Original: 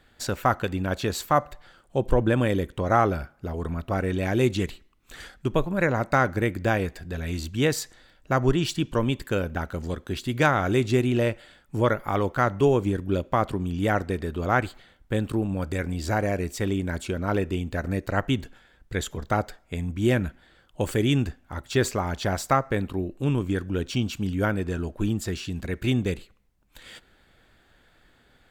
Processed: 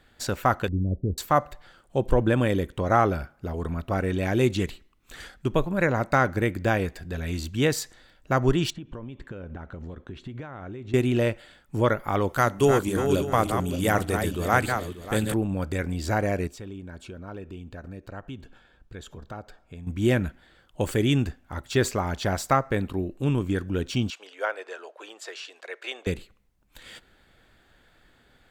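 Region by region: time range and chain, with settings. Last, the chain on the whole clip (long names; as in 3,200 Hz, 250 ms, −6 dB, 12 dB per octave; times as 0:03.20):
0:00.68–0:01.18: Gaussian smoothing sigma 21 samples + low-shelf EQ 100 Hz +10.5 dB
0:08.70–0:10.94: notch filter 4,800 Hz, Q 8.1 + downward compressor 20 to 1, threshold −32 dBFS + head-to-tape spacing loss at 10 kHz 25 dB
0:12.29–0:15.34: feedback delay that plays each chunk backwards 294 ms, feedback 43%, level −6 dB + parametric band 11,000 Hz +15 dB 1.7 octaves + mains-hum notches 50/100/150/200/250/300 Hz
0:16.47–0:19.87: high-shelf EQ 6,500 Hz −11 dB + downward compressor 2 to 1, threshold −45 dBFS + notch filter 2,000 Hz, Q 6.1
0:24.10–0:26.07: Butterworth high-pass 480 Hz + high-frequency loss of the air 69 metres
whole clip: no processing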